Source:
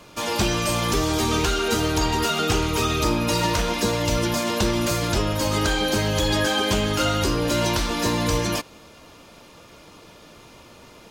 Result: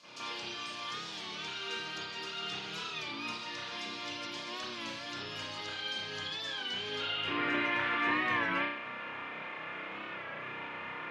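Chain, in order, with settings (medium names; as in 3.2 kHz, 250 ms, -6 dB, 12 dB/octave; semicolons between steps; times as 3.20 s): band-pass sweep 4.9 kHz -> 2 kHz, 6.87–7.37 s; high-pass 110 Hz 24 dB/octave; peaking EQ 10 kHz +4 dB 1.1 oct; compression 10:1, threshold -43 dBFS, peak gain reduction 17 dB; RIAA curve playback; reverberation RT60 0.80 s, pre-delay 31 ms, DRR -13.5 dB; warped record 33 1/3 rpm, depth 100 cents; trim +3.5 dB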